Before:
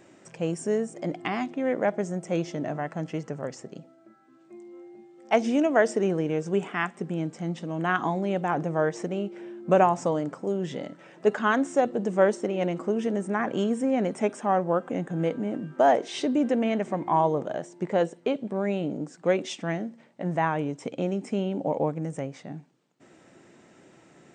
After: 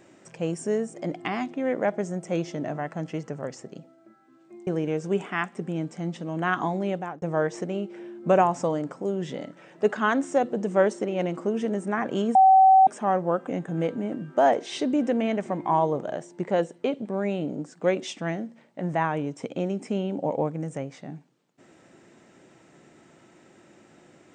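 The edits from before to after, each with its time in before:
4.67–6.09 cut
8.3–8.64 fade out
13.77–14.29 bleep 764 Hz -11.5 dBFS

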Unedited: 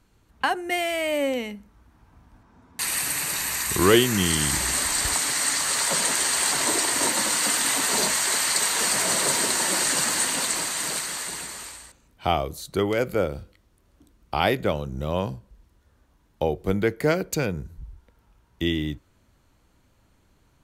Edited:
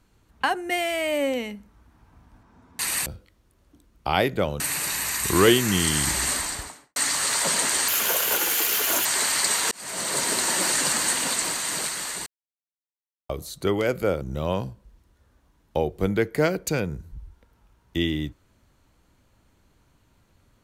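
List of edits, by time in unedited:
4.72–5.42 studio fade out
6.34–8.17 speed 156%
8.83–9.72 fade in equal-power
11.38–12.41 mute
13.33–14.87 move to 3.06

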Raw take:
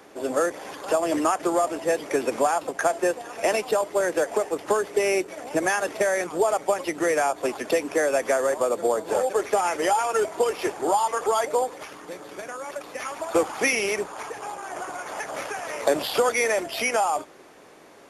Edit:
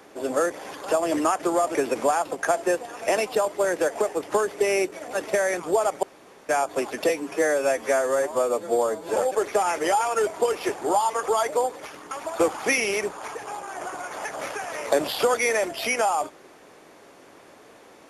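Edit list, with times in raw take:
1.75–2.11 cut
5.49–5.8 cut
6.7–7.16 room tone
7.76–9.14 stretch 1.5×
12.09–13.06 cut

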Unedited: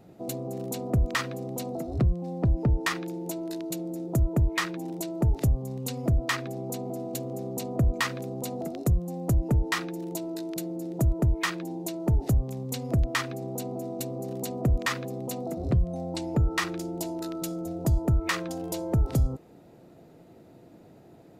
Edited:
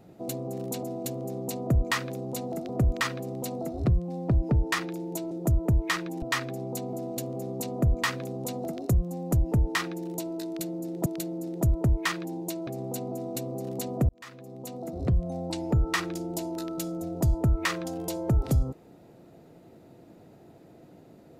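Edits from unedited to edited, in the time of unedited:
3.45–3.99 cut
4.9–6.19 cut
6.92–8.78 copy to 0.83
10.44–11.03 loop, 2 plays
12.05–13.31 cut
14.73–15.88 fade in

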